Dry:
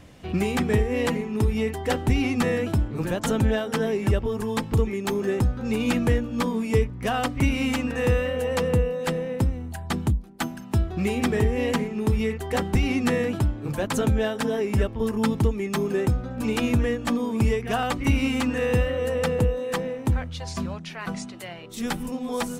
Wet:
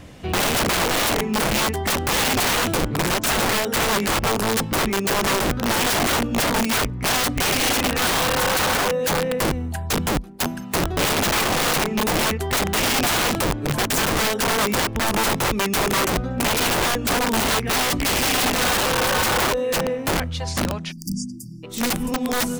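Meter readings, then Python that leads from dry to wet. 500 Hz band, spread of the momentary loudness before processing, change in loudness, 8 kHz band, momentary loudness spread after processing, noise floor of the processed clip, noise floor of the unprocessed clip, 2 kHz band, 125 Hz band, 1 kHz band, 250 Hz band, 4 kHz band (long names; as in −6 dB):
+1.5 dB, 7 LU, +4.5 dB, +15.5 dB, 6 LU, −33 dBFS, −38 dBFS, +9.5 dB, −3.0 dB, +9.5 dB, 0.0 dB, +13.5 dB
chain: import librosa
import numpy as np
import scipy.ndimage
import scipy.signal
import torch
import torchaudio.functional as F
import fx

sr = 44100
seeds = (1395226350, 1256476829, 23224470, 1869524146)

y = (np.mod(10.0 ** (22.0 / 20.0) * x + 1.0, 2.0) - 1.0) / 10.0 ** (22.0 / 20.0)
y = fx.spec_erase(y, sr, start_s=20.92, length_s=0.71, low_hz=340.0, high_hz=4600.0)
y = y * librosa.db_to_amplitude(6.5)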